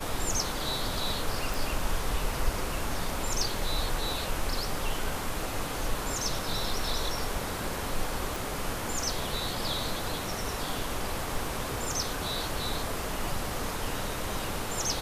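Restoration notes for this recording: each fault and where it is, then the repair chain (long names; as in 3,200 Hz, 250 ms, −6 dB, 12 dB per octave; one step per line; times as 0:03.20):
0:01.54: click
0:08.36: click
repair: click removal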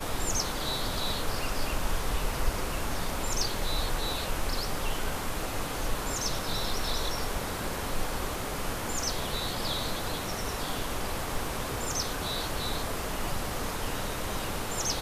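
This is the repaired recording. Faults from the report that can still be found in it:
none of them is left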